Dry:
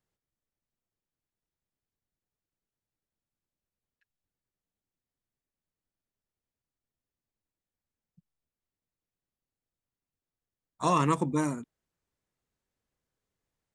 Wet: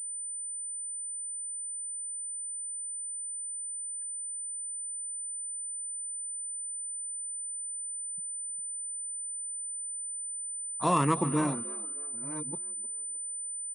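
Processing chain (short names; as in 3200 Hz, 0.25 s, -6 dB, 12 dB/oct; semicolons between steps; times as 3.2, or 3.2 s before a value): reverse delay 0.699 s, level -12.5 dB; frequency-shifting echo 0.308 s, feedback 38%, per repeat +64 Hz, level -20 dB; pulse-width modulation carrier 9000 Hz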